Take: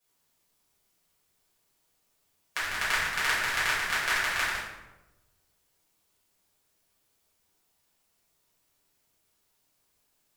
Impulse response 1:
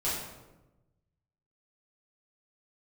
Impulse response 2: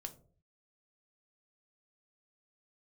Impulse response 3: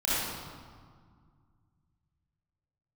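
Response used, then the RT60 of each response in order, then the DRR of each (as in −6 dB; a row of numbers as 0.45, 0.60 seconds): 1; 1.1, 0.50, 1.9 seconds; −10.0, 5.5, −10.0 decibels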